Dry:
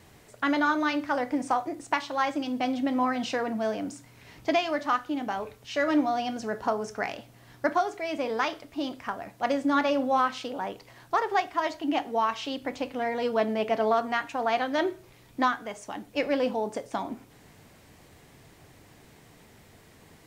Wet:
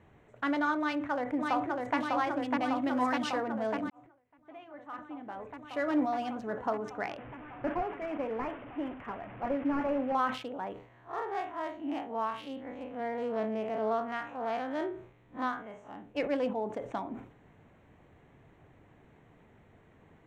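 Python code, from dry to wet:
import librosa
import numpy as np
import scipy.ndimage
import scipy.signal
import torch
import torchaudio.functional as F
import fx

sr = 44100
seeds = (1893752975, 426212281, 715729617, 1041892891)

y = fx.echo_throw(x, sr, start_s=0.79, length_s=1.18, ms=600, feedback_pct=80, wet_db=-2.5)
y = fx.high_shelf(y, sr, hz=2500.0, db=8.0, at=(2.82, 3.3))
y = fx.delta_mod(y, sr, bps=16000, step_db=-35.0, at=(7.18, 10.15))
y = fx.spec_blur(y, sr, span_ms=89.0, at=(10.73, 16.15))
y = fx.edit(y, sr, fx.fade_in_span(start_s=3.9, length_s=2.05, curve='qua'), tone=tone)
y = fx.wiener(y, sr, points=9)
y = fx.high_shelf(y, sr, hz=4600.0, db=-8.5)
y = fx.sustainer(y, sr, db_per_s=110.0)
y = y * 10.0 ** (-4.5 / 20.0)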